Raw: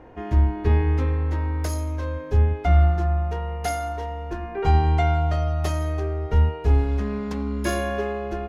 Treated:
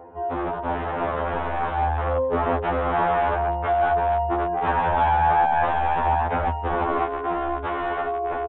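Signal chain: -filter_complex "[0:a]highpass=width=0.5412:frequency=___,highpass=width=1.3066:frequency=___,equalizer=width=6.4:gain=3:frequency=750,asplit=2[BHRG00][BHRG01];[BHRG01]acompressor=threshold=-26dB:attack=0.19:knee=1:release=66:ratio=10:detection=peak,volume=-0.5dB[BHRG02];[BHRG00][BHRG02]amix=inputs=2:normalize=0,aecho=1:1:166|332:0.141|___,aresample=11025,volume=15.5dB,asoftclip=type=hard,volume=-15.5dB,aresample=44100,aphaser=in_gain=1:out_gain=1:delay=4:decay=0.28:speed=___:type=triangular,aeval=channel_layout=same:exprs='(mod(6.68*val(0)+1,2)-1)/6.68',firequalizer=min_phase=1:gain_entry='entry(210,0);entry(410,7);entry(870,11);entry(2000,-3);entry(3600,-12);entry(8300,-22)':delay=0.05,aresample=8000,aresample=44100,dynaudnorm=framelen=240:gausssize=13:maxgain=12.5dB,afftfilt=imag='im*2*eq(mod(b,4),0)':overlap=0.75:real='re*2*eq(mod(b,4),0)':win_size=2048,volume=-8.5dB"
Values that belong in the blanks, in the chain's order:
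44, 44, 0.024, 0.68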